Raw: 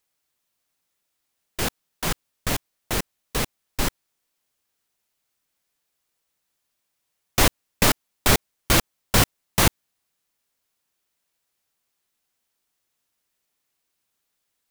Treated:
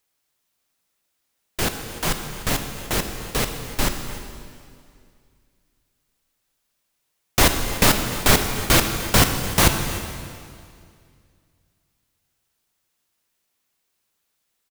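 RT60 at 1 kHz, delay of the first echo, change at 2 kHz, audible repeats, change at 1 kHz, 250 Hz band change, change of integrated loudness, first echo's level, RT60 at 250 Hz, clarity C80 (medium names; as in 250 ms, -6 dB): 2.2 s, 298 ms, +3.0 dB, 1, +3.0 dB, +3.5 dB, +2.5 dB, -17.5 dB, 2.4 s, 7.5 dB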